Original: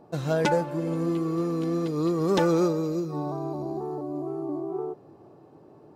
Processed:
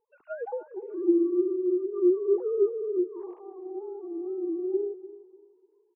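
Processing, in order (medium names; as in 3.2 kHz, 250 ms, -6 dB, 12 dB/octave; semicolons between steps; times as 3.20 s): formants replaced by sine waves; peaking EQ 580 Hz -14.5 dB 0.55 oct; low-pass that closes with the level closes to 630 Hz, closed at -27.5 dBFS; on a send: feedback delay 297 ms, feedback 45%, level -11 dB; on the sum: spectral contrast expander 1.5:1; trim +4 dB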